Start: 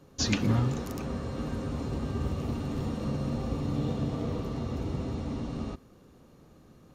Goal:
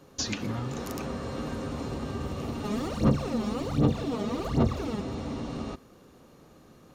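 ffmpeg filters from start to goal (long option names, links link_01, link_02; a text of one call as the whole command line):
ffmpeg -i in.wav -filter_complex "[0:a]lowshelf=frequency=230:gain=-8,acompressor=threshold=-34dB:ratio=5,asplit=3[link_01][link_02][link_03];[link_01]afade=type=out:start_time=2.63:duration=0.02[link_04];[link_02]aphaser=in_gain=1:out_gain=1:delay=4.9:decay=0.78:speed=1.3:type=sinusoidal,afade=type=in:start_time=2.63:duration=0.02,afade=type=out:start_time=5:duration=0.02[link_05];[link_03]afade=type=in:start_time=5:duration=0.02[link_06];[link_04][link_05][link_06]amix=inputs=3:normalize=0,volume=5dB" out.wav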